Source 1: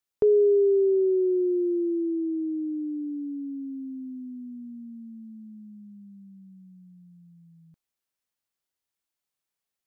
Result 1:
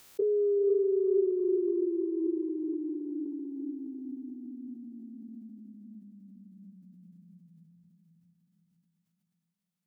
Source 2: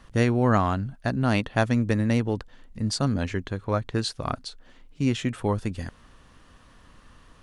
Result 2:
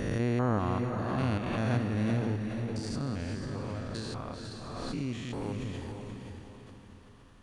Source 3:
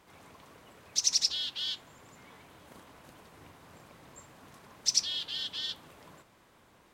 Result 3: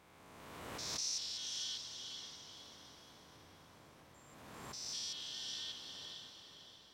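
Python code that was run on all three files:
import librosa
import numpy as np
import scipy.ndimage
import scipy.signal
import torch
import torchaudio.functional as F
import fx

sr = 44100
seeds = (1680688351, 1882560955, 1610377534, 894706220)

y = fx.spec_steps(x, sr, hold_ms=200)
y = fx.echo_diffused(y, sr, ms=483, feedback_pct=43, wet_db=-4.5)
y = fx.pre_swell(y, sr, db_per_s=27.0)
y = y * librosa.db_to_amplitude(-7.0)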